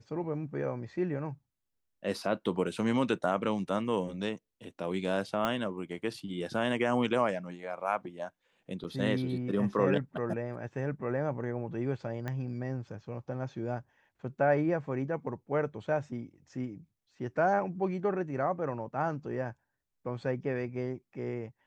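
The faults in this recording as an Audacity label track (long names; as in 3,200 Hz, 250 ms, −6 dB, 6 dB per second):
5.450000	5.450000	click −16 dBFS
8.840000	8.850000	drop-out 7.9 ms
12.280000	12.280000	click −23 dBFS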